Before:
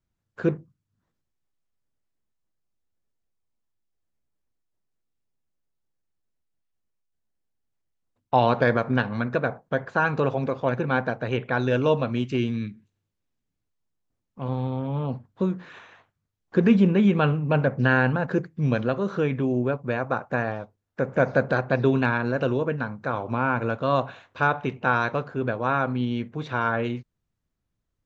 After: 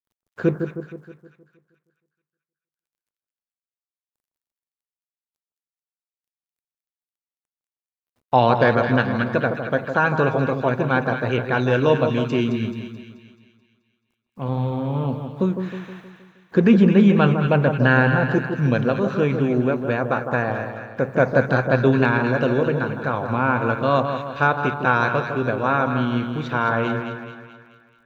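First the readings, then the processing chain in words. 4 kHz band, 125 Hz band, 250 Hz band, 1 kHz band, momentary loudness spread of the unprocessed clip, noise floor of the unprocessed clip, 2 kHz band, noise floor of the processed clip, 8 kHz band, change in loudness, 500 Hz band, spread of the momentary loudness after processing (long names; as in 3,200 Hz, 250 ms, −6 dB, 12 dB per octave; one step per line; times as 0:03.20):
+4.5 dB, +4.5 dB, +4.5 dB, +4.5 dB, 9 LU, −81 dBFS, +4.5 dB, below −85 dBFS, can't be measured, +4.5 dB, +4.5 dB, 11 LU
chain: bit reduction 12 bits
echo with a time of its own for lows and highs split 1,300 Hz, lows 157 ms, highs 216 ms, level −7 dB
level +3.5 dB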